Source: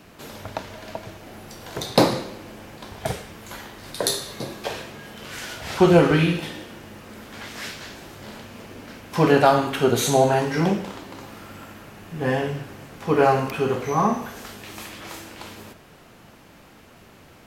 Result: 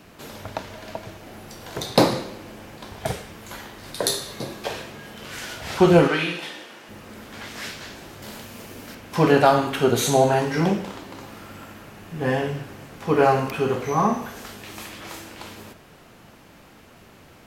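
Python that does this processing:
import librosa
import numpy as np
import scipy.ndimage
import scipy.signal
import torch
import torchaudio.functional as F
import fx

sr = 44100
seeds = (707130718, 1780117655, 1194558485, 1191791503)

y = fx.weighting(x, sr, curve='A', at=(6.08, 6.89))
y = fx.high_shelf(y, sr, hz=6300.0, db=11.5, at=(8.22, 8.95))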